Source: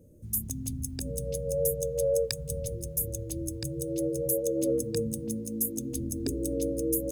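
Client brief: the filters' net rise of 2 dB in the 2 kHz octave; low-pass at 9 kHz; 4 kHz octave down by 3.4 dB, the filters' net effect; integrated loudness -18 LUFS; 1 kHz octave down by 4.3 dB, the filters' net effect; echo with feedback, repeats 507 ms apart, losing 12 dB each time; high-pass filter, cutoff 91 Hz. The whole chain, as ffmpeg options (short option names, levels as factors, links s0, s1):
-af "highpass=91,lowpass=9000,equalizer=f=1000:t=o:g=-7.5,equalizer=f=2000:t=o:g=6,equalizer=f=4000:t=o:g=-5,aecho=1:1:507|1014|1521:0.251|0.0628|0.0157,volume=5.31"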